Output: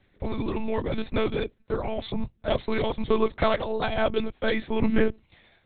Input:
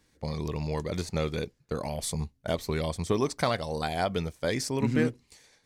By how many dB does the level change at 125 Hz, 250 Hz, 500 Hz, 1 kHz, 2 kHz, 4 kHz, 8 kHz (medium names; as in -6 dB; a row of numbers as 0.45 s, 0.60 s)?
-3.0 dB, +3.0 dB, +4.5 dB, +3.0 dB, +4.5 dB, +1.0 dB, under -40 dB